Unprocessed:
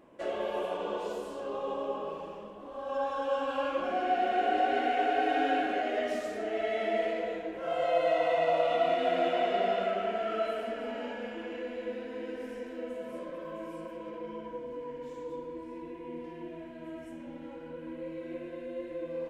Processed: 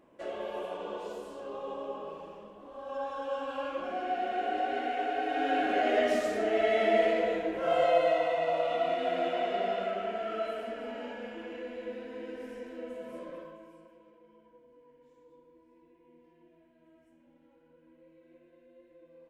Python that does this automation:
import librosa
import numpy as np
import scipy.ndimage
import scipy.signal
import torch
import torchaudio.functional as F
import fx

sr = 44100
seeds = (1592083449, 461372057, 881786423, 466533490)

y = fx.gain(x, sr, db=fx.line((5.29, -4.0), (5.9, 5.0), (7.77, 5.0), (8.35, -2.5), (13.38, -2.5), (13.58, -10.5), (14.2, -19.5)))